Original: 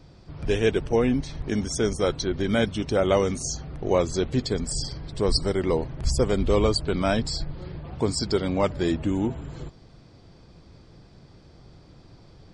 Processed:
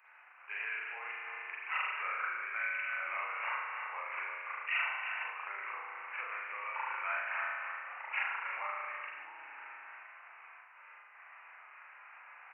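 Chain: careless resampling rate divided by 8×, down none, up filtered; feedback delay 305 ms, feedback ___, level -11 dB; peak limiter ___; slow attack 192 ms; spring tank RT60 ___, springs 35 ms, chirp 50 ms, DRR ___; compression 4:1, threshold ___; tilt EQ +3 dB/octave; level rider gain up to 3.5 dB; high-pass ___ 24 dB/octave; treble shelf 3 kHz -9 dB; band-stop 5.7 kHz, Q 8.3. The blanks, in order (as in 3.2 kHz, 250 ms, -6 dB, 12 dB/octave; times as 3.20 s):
16%, -14 dBFS, 1.1 s, -7 dB, -28 dBFS, 1.1 kHz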